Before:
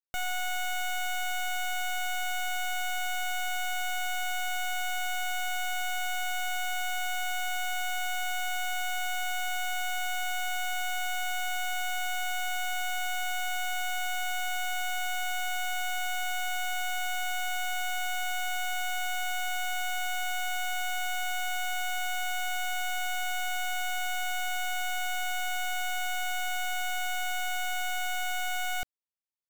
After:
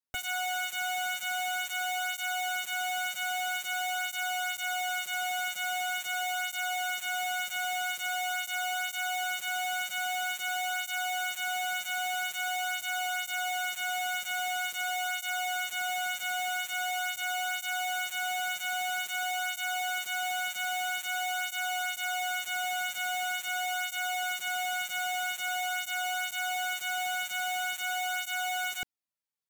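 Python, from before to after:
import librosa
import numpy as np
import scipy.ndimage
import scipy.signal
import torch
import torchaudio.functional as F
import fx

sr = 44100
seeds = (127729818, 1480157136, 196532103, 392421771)

y = fx.flanger_cancel(x, sr, hz=0.23, depth_ms=6.1)
y = F.gain(torch.from_numpy(y), 3.5).numpy()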